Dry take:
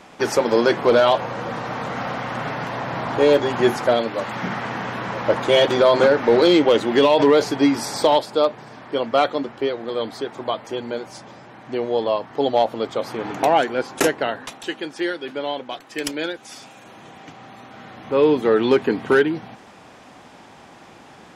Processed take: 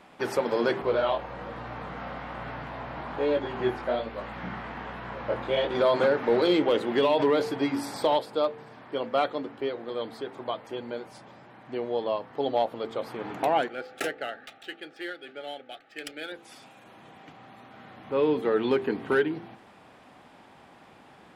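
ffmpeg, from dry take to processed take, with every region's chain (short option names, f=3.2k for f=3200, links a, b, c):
-filter_complex "[0:a]asettb=1/sr,asplit=3[a][b][c];[a]atrim=end=0.824[d];[b]atrim=start=0.82:end=5.75,asetpts=PTS-STARTPTS,afade=t=in:d=0.004:c=qsin,afade=t=out:st=4.926:d=0.004:c=qsin,acrossover=split=4900[e][f];[f]acompressor=threshold=-54dB:ratio=4:attack=1:release=60[g];[e][g]amix=inputs=2:normalize=0,flanger=delay=17.5:depth=6.3:speed=1.2,aeval=exprs='val(0)+0.0126*(sin(2*PI*60*n/s)+sin(2*PI*2*60*n/s)/2+sin(2*PI*3*60*n/s)/3+sin(2*PI*4*60*n/s)/4+sin(2*PI*5*60*n/s)/5)':c=same[h];[c]atrim=start=5.746[i];[d][h]acrossfade=d=0.004:c1=hsin:c2=qsin[j];[j][i]acrossfade=d=0.004:c1=qsin:c2=hsin,asettb=1/sr,asplit=3[k][l][m];[k]atrim=end=13.684[n];[l]atrim=start=13.68:end=16.32,asetpts=PTS-STARTPTS,afade=t=in:d=0.004:c=qsin,afade=t=out:st=2.636:d=0.004:c=qsin,lowshelf=f=500:g=-10.5,adynamicsmooth=sensitivity=6.5:basefreq=3.9k,asuperstop=centerf=1000:order=12:qfactor=3.5[o];[m]atrim=start=16.316[p];[n][o]acrossfade=d=0.004:c1=hsin:c2=qsin[q];[q][p]acrossfade=d=0.004:c1=qsin:c2=hsin,equalizer=f=6.2k:t=o:w=0.7:g=-9,bandreject=f=56.41:t=h:w=4,bandreject=f=112.82:t=h:w=4,bandreject=f=169.23:t=h:w=4,bandreject=f=225.64:t=h:w=4,bandreject=f=282.05:t=h:w=4,bandreject=f=338.46:t=h:w=4,bandreject=f=394.87:t=h:w=4,bandreject=f=451.28:t=h:w=4,bandreject=f=507.69:t=h:w=4,volume=-7.5dB"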